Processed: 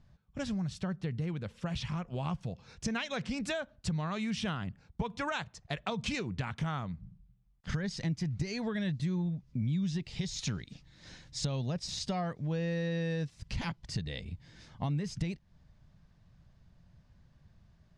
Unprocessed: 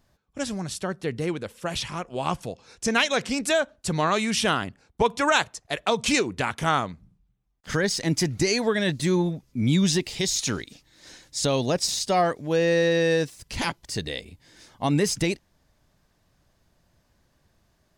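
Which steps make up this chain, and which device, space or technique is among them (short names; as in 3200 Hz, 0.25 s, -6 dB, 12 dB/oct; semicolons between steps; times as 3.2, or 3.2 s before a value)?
jukebox (LPF 5000 Hz 12 dB/oct; resonant low shelf 230 Hz +9.5 dB, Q 1.5; compressor 4:1, threshold -29 dBFS, peak gain reduction 17 dB); gain -4 dB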